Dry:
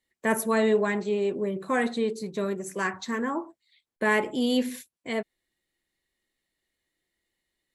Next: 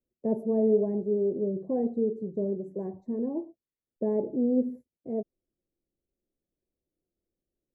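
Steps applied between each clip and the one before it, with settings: inverse Chebyshev low-pass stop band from 1.2 kHz, stop band 40 dB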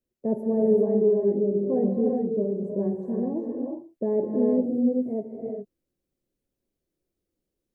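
gated-style reverb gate 430 ms rising, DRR -0.5 dB; trim +1.5 dB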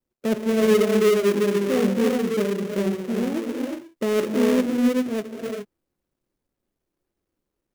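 dead-time distortion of 0.27 ms; trim +3 dB

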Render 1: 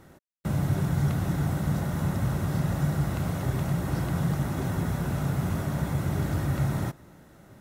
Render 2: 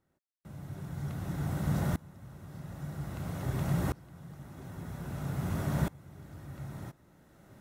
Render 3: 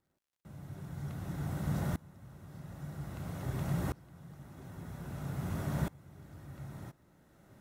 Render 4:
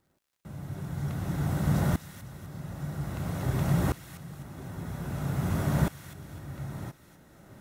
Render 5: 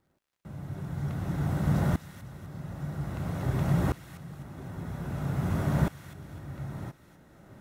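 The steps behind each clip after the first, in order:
sawtooth tremolo in dB swelling 0.51 Hz, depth 26 dB
crackle 100 per s -66 dBFS; trim -3.5 dB
feedback echo behind a high-pass 252 ms, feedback 42%, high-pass 2 kHz, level -8.5 dB; trim +8 dB
treble shelf 4.1 kHz -7 dB

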